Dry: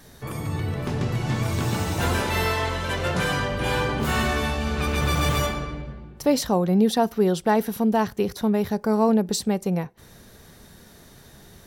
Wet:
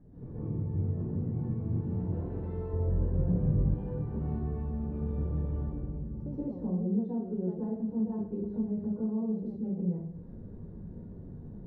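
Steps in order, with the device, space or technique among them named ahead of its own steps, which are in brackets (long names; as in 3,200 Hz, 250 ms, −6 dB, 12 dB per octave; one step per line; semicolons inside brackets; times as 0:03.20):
television next door (downward compressor 3 to 1, threshold −39 dBFS, peak gain reduction 18 dB; low-pass filter 300 Hz 12 dB per octave; convolution reverb RT60 0.70 s, pre-delay 119 ms, DRR −9.5 dB)
0:02.73–0:03.74: spectral tilt −2.5 dB per octave
level −3 dB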